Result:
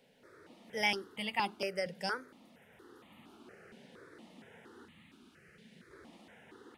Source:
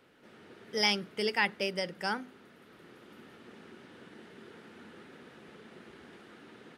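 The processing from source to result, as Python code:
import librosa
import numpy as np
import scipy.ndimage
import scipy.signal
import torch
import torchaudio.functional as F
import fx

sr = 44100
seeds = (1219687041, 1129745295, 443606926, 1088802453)

y = fx.curve_eq(x, sr, hz=(180.0, 730.0, 1900.0), db=(0, -14, -1), at=(4.85, 5.91))
y = fx.phaser_held(y, sr, hz=4.3, low_hz=330.0, high_hz=1500.0)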